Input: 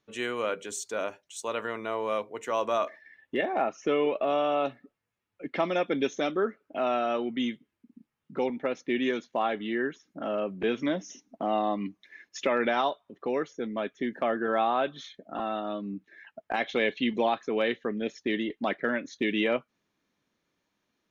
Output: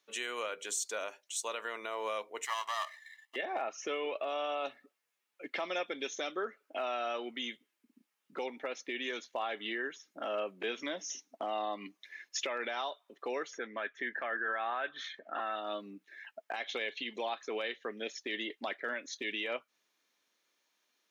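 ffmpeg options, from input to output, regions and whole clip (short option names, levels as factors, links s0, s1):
-filter_complex "[0:a]asettb=1/sr,asplit=3[s0][s1][s2];[s0]atrim=end=2.454[s3];[s1]atrim=start=2.45:end=3.36,asetpts=PTS-STARTPTS,afade=t=in:d=0.004:c=qsin,afade=t=out:st=0.906:d=0.004:c=qsin,aeval=exprs='if(lt(val(0),0),0.251*val(0),val(0))':c=same,highpass=840,aecho=1:1:1:0.81,atrim=end_sample=40131[s4];[s2]atrim=start=3.356[s5];[s3][s4]acrossfade=d=0.004:c1=hsin:c2=qsin[s6];[s6][s5]acrossfade=d=0.004:c1=qsin:c2=hsin,asettb=1/sr,asplit=3[s7][s8][s9];[s7]atrim=end=13.534[s10];[s8]atrim=start=13.53:end=15.56,asetpts=PTS-STARTPTS,afade=t=in:d=0.004:c=qsin,afade=t=out:st=2.026:d=0.004:c=qsin,lowpass=f=2200:p=1,equalizer=f=1700:t=o:w=0.83:g=13.5,acompressor=mode=upward:threshold=0.00794:ratio=2.5:attack=3.2:release=140:knee=2.83:detection=peak[s11];[s9]atrim=start=15.556[s12];[s10][s11]acrossfade=d=0.004:c1=hsin:c2=qsin[s13];[s13][s12]acrossfade=d=0.004:c1=qsin:c2=hsin,highshelf=f=2200:g=10,alimiter=limit=0.0841:level=0:latency=1:release=202,highpass=420,volume=0.708"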